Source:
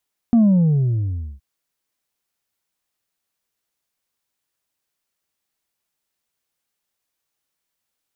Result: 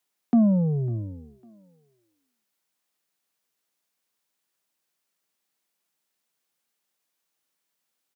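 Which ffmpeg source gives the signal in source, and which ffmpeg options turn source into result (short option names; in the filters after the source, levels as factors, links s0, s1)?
-f lavfi -i "aevalsrc='0.299*clip((1.07-t)/1.03,0,1)*tanh(1.33*sin(2*PI*240*1.07/log(65/240)*(exp(log(65/240)*t/1.07)-1)))/tanh(1.33)':d=1.07:s=44100"
-filter_complex "[0:a]highpass=f=140:w=0.5412,highpass=f=140:w=1.3066,acrossover=split=230[s0][s1];[s0]alimiter=level_in=1.06:limit=0.0631:level=0:latency=1,volume=0.944[s2];[s1]aecho=1:1:551|1102:0.0794|0.0278[s3];[s2][s3]amix=inputs=2:normalize=0"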